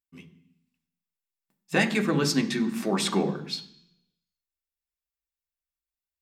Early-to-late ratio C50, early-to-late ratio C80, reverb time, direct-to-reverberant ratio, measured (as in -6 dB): 13.5 dB, 16.0 dB, 0.65 s, 4.0 dB